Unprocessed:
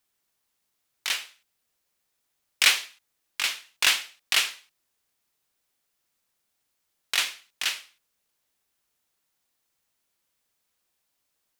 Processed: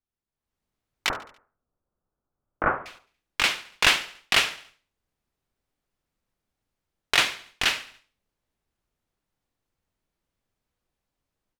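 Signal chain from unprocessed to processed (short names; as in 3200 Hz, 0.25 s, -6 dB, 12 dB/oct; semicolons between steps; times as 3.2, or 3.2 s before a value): 1.09–2.86 elliptic low-pass 1400 Hz, stop band 70 dB; gate -57 dBFS, range -13 dB; tilt -3.5 dB/oct; AGC gain up to 12.5 dB; on a send: feedback echo 71 ms, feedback 52%, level -20 dB; on the sum: gain -1.5 dB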